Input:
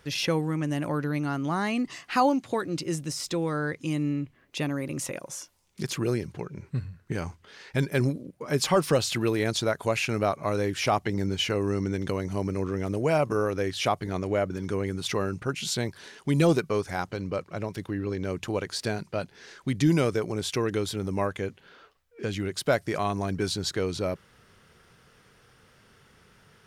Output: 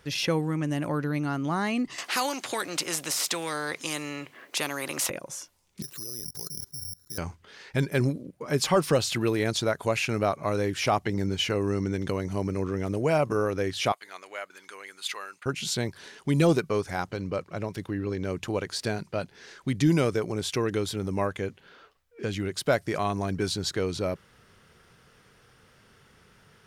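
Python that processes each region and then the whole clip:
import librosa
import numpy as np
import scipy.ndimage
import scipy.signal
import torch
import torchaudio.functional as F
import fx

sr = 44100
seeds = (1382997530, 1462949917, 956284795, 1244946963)

y = fx.chain(x, sr, fx.highpass(hz=410.0, slope=12),
    fx.spectral_comp(ratio=2.0), at=(1.98, 5.1))
y = fx.chain(y, sr, fx.peak_eq(hz=2300.0, db=-10.5, octaves=0.22),
    fx.level_steps(step_db=23),
    fx.resample_bad(factor=8, down='filtered', up='zero_stuff'), at=(5.82, 7.18))
y = fx.chain(y, sr, fx.highpass(hz=1300.0, slope=12),
    fx.notch(hz=5600.0, q=5.4), at=(13.92, 15.46))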